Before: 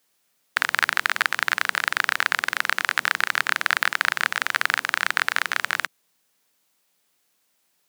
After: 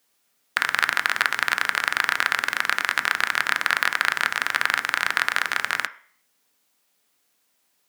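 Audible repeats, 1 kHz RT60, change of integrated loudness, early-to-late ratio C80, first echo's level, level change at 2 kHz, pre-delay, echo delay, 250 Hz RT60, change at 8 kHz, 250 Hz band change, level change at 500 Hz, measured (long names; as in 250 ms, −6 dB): no echo audible, 0.50 s, +0.5 dB, 20.5 dB, no echo audible, +0.5 dB, 3 ms, no echo audible, 0.45 s, 0.0 dB, +0.5 dB, +0.5 dB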